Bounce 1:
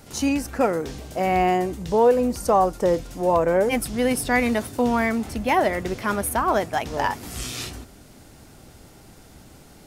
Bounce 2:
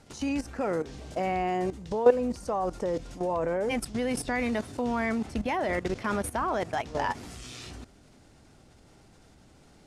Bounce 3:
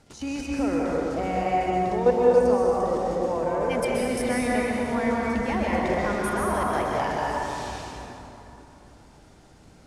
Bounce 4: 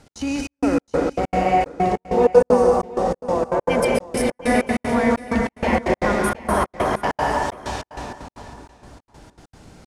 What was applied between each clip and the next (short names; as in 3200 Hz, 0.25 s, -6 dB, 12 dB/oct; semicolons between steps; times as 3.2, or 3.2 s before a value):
level quantiser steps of 14 dB; Bessel low-pass 7500 Hz, order 4
plate-style reverb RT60 3.2 s, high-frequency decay 0.55×, pre-delay 0.115 s, DRR -4.5 dB; gain -1.5 dB
step gate "x.xxxx..xx..xx." 192 bpm -60 dB; echo 0.72 s -18 dB; gain +6.5 dB